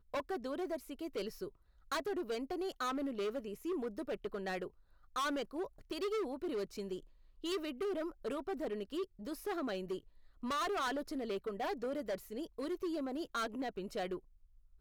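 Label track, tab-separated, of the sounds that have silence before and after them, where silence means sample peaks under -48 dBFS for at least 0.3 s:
1.920000	4.680000	sound
5.160000	7.000000	sound
7.440000	9.990000	sound
10.430000	14.190000	sound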